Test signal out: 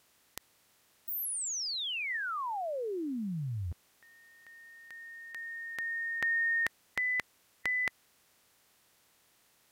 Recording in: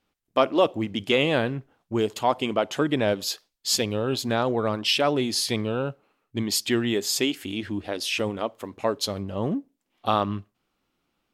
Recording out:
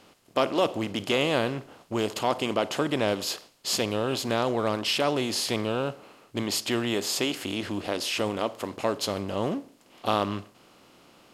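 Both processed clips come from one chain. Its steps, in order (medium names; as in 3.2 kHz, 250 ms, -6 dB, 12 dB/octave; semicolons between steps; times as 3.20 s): spectral levelling over time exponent 0.6; trim -6 dB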